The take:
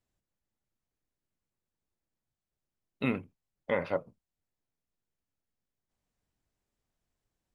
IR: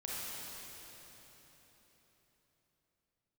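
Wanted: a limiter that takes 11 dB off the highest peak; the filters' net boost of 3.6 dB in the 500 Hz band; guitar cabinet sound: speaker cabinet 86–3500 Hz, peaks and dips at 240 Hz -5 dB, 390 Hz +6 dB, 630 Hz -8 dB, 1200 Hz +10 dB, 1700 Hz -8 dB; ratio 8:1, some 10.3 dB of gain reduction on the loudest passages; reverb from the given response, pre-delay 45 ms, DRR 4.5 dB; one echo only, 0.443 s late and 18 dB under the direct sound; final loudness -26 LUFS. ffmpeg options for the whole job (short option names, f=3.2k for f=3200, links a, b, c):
-filter_complex "[0:a]equalizer=f=500:t=o:g=5.5,acompressor=threshold=-31dB:ratio=8,alimiter=level_in=4dB:limit=-24dB:level=0:latency=1,volume=-4dB,aecho=1:1:443:0.126,asplit=2[a][b];[1:a]atrim=start_sample=2205,adelay=45[c];[b][c]afir=irnorm=-1:irlink=0,volume=-7dB[d];[a][d]amix=inputs=2:normalize=0,highpass=86,equalizer=f=240:t=q:w=4:g=-5,equalizer=f=390:t=q:w=4:g=6,equalizer=f=630:t=q:w=4:g=-8,equalizer=f=1.2k:t=q:w=4:g=10,equalizer=f=1.7k:t=q:w=4:g=-8,lowpass=f=3.5k:w=0.5412,lowpass=f=3.5k:w=1.3066,volume=19dB"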